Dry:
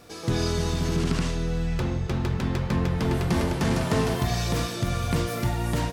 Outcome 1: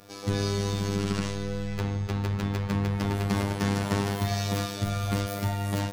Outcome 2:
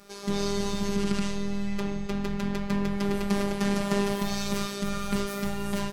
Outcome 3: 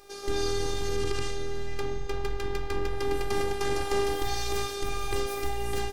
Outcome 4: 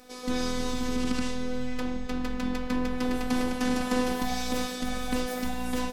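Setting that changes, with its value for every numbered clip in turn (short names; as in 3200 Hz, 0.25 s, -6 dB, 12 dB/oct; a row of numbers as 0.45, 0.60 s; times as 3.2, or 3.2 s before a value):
robotiser, frequency: 100, 200, 400, 250 Hz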